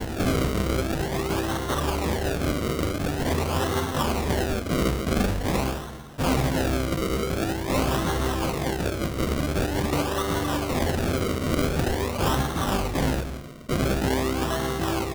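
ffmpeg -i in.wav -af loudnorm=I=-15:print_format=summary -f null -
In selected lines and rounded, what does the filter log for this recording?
Input Integrated:    -25.9 LUFS
Input True Peak:     -11.1 dBTP
Input LRA:             0.4 LU
Input Threshold:     -35.9 LUFS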